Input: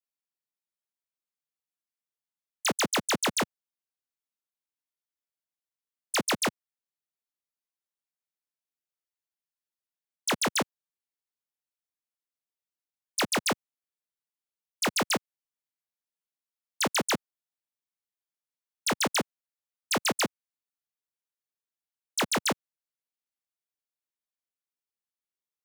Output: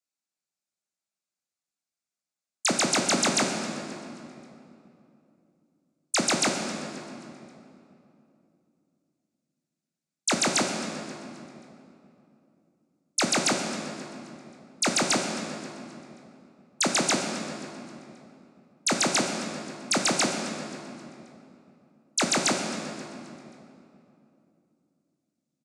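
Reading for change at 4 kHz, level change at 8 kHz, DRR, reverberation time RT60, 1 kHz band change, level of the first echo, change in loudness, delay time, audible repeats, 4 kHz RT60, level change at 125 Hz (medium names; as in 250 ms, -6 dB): +3.5 dB, +6.0 dB, 3.0 dB, 2.8 s, +2.5 dB, -18.0 dB, +2.5 dB, 266 ms, 3, 2.0 s, +4.5 dB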